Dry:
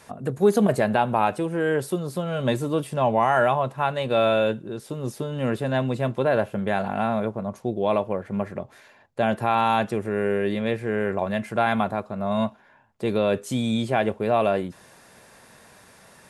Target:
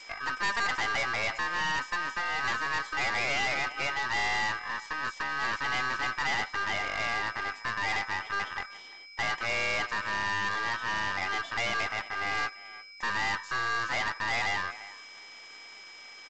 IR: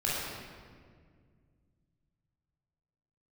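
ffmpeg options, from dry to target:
-filter_complex "[0:a]acrossover=split=2600[link_01][link_02];[link_02]acompressor=threshold=-44dB:ratio=4:attack=1:release=60[link_03];[link_01][link_03]amix=inputs=2:normalize=0,aeval=exprs='val(0)+0.00562*sin(2*PI*3700*n/s)':channel_layout=same,aeval=exprs='val(0)*sin(2*PI*1400*n/s)':channel_layout=same,highpass=frequency=760:poles=1,bandreject=frequency=4900:width=17,aecho=1:1:348:0.0668,aeval=exprs='(tanh(35.5*val(0)+0.45)-tanh(0.45))/35.5':channel_layout=same,volume=4.5dB" -ar 16000 -c:a g722

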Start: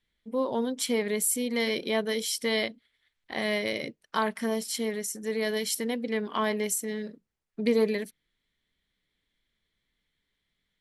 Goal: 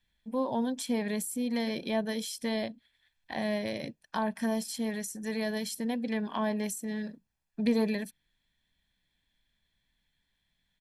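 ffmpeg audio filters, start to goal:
ffmpeg -i in.wav -filter_complex "[0:a]aecho=1:1:1.2:0.57,acrossover=split=710[link_01][link_02];[link_02]acompressor=threshold=-38dB:ratio=4[link_03];[link_01][link_03]amix=inputs=2:normalize=0" out.wav

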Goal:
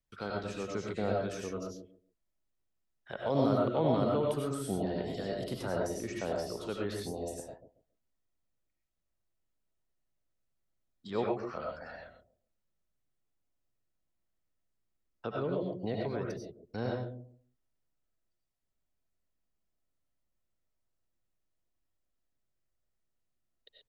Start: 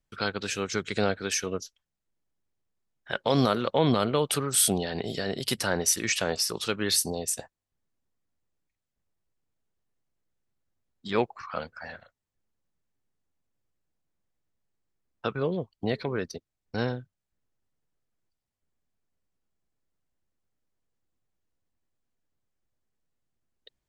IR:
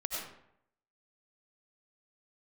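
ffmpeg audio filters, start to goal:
-filter_complex "[0:a]acrossover=split=540|1100[link_01][link_02][link_03];[link_01]aecho=1:1:138|276|414:0.631|0.133|0.0278[link_04];[link_03]acompressor=threshold=-45dB:ratio=4[link_05];[link_04][link_02][link_05]amix=inputs=3:normalize=0[link_06];[1:a]atrim=start_sample=2205,atrim=end_sample=6174[link_07];[link_06][link_07]afir=irnorm=-1:irlink=0,volume=-5.5dB"

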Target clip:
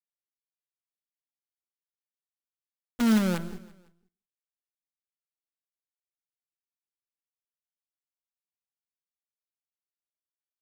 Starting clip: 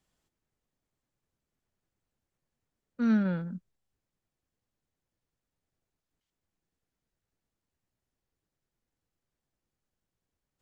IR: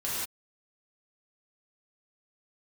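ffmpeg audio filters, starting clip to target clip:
-filter_complex "[0:a]acrusher=bits=6:dc=4:mix=0:aa=0.000001,aecho=1:1:168|336|504:0.1|0.046|0.0212,asplit=2[link_01][link_02];[1:a]atrim=start_sample=2205[link_03];[link_02][link_03]afir=irnorm=-1:irlink=0,volume=-25.5dB[link_04];[link_01][link_04]amix=inputs=2:normalize=0,volume=2.5dB"

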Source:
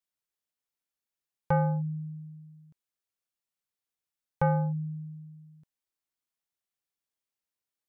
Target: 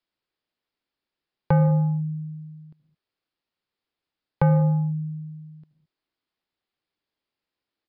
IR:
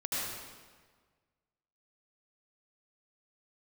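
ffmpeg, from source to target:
-filter_complex "[0:a]equalizer=frequency=330:width=1.5:gain=5.5,acrossover=split=270|3000[link_01][link_02][link_03];[link_02]acompressor=threshold=-33dB:ratio=4[link_04];[link_01][link_04][link_03]amix=inputs=3:normalize=0,asplit=2[link_05][link_06];[link_06]highshelf=frequency=2000:gain=-10.5[link_07];[1:a]atrim=start_sample=2205,afade=type=out:start_time=0.27:duration=0.01,atrim=end_sample=12348[link_08];[link_07][link_08]afir=irnorm=-1:irlink=0,volume=-14.5dB[link_09];[link_05][link_09]amix=inputs=2:normalize=0,aresample=11025,aresample=44100,volume=7dB"

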